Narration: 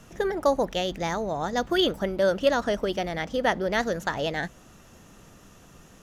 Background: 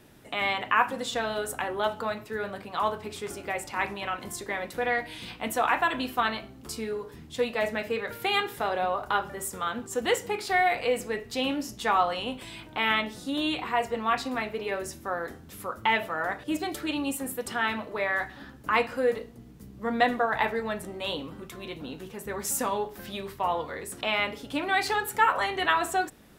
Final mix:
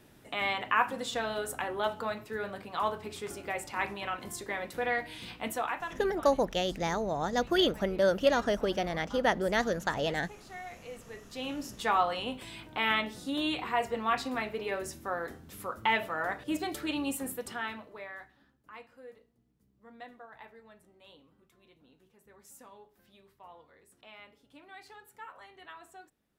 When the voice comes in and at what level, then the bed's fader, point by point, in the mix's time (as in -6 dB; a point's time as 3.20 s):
5.80 s, -3.0 dB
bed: 5.46 s -3.5 dB
6.16 s -20.5 dB
10.81 s -20.5 dB
11.78 s -3 dB
17.27 s -3 dB
18.61 s -24.5 dB